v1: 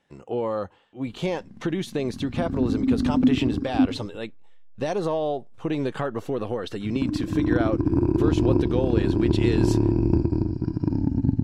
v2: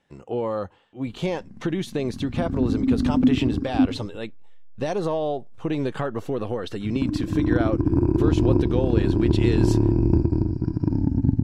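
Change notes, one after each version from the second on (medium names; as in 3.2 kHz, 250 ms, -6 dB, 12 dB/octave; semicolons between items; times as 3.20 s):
background: add peaking EQ 3.4 kHz -14.5 dB 0.36 oct; master: add bass shelf 120 Hz +4.5 dB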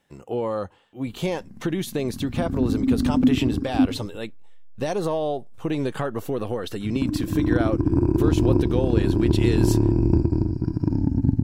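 master: remove distance through air 60 m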